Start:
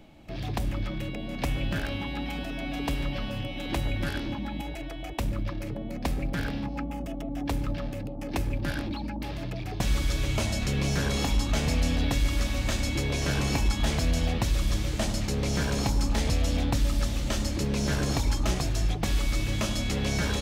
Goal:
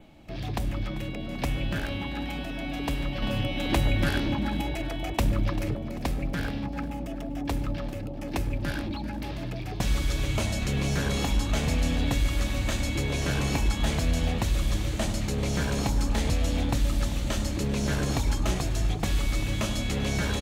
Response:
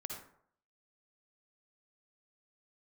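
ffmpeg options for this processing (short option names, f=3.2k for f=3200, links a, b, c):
-filter_complex "[0:a]adynamicequalizer=threshold=0.00178:dfrequency=5200:dqfactor=4.3:tfrequency=5200:tqfactor=4.3:attack=5:release=100:ratio=0.375:range=2.5:mode=cutabove:tftype=bell,asettb=1/sr,asplit=3[a][b][c];[a]atrim=end=3.224[d];[b]atrim=start=3.22:end=5.76,asetpts=PTS-STARTPTS,afade=t=in:d=0.004:c=qsin,afade=t=out:st=2.536:d=0.004:c=qsin,acontrast=27[e];[c]atrim=start=5.756[f];[d][e]acrossfade=d=0.004:c1=hsin:c2=qsin[g];[g][f]acrossfade=d=0.004:c1=qsin:c2=hsin,asplit=5[h][i][j][k][l];[i]adelay=391,afreqshift=40,volume=-16.5dB[m];[j]adelay=782,afreqshift=80,volume=-22.7dB[n];[k]adelay=1173,afreqshift=120,volume=-28.9dB[o];[l]adelay=1564,afreqshift=160,volume=-35.1dB[p];[h][m][n][o][p]amix=inputs=5:normalize=0"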